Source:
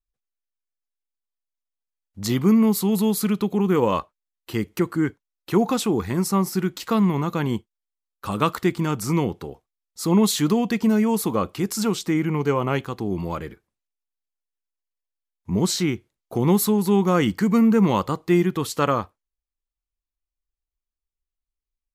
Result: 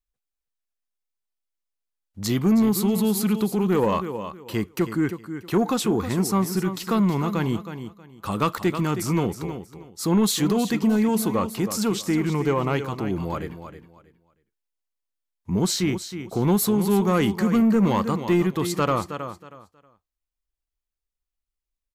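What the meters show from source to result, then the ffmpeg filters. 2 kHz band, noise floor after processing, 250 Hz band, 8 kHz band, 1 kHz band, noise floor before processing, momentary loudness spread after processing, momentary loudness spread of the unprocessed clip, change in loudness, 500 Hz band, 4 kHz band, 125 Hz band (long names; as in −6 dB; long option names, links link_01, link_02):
−1.0 dB, −85 dBFS, −1.0 dB, 0.0 dB, −1.0 dB, below −85 dBFS, 12 LU, 10 LU, −1.0 dB, −1.0 dB, −0.5 dB, −0.5 dB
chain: -filter_complex "[0:a]asplit=2[link_01][link_02];[link_02]aecho=0:1:318|636|954:0.282|0.0648|0.0149[link_03];[link_01][link_03]amix=inputs=2:normalize=0,asoftclip=type=tanh:threshold=-12dB"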